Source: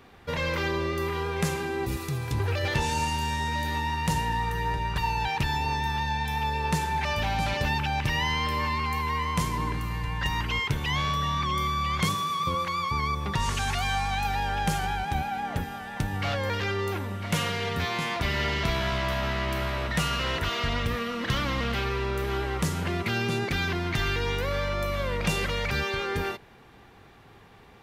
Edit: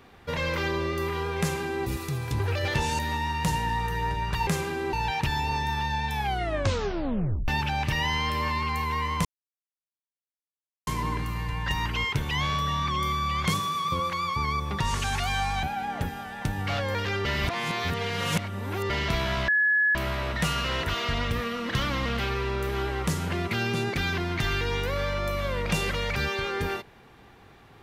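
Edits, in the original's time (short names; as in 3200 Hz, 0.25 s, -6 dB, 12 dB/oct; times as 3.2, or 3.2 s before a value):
1.4–1.86 copy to 5.1
2.99–3.62 cut
6.31 tape stop 1.34 s
9.42 insert silence 1.62 s
14.18–15.18 cut
16.8–18.45 reverse
19.03–19.5 bleep 1700 Hz -19 dBFS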